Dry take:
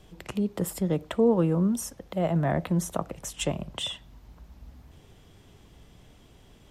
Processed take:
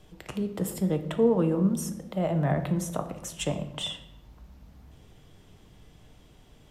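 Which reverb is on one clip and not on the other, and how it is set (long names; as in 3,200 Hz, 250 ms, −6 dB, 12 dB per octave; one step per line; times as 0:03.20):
rectangular room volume 300 cubic metres, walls mixed, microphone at 0.49 metres
level −2 dB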